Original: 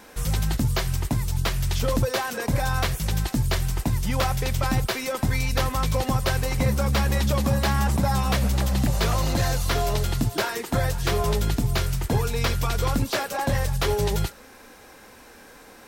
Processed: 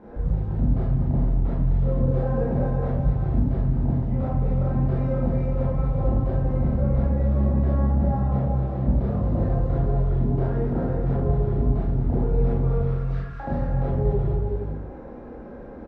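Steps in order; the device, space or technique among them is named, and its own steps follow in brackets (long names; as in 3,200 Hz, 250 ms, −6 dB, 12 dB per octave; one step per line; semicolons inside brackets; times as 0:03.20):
0:12.79–0:13.40: Butterworth high-pass 1,200 Hz 72 dB per octave
television next door (downward compressor 3 to 1, threshold −35 dBFS, peak gain reduction 13.5 dB; low-pass filter 580 Hz 12 dB per octave; convolution reverb RT60 0.70 s, pre-delay 23 ms, DRR −6.5 dB)
multi-tap delay 224/373/463 ms −8.5/−5.5/−10 dB
level +3 dB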